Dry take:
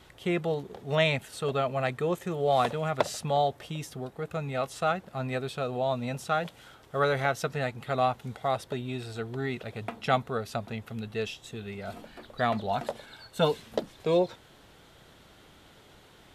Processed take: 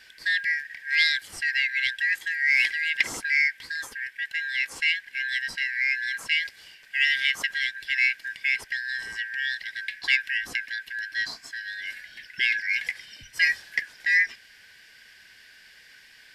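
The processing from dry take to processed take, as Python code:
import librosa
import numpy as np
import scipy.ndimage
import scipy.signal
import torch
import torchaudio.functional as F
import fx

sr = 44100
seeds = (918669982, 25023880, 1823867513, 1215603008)

p1 = fx.band_shuffle(x, sr, order='4123')
p2 = 10.0 ** (-16.5 / 20.0) * np.tanh(p1 / 10.0 ** (-16.5 / 20.0))
p3 = p1 + F.gain(torch.from_numpy(p2), -7.5).numpy()
y = fx.band_squash(p3, sr, depth_pct=40, at=(10.23, 10.68))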